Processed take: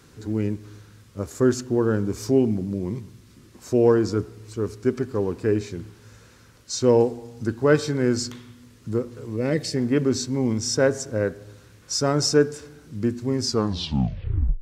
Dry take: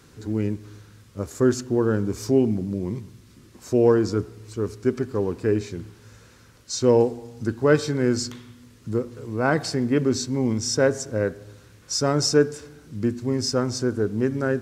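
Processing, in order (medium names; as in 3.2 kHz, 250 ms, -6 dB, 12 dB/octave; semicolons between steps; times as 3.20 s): tape stop on the ending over 1.18 s; time-frequency box 9.36–9.76 s, 610–1700 Hz -15 dB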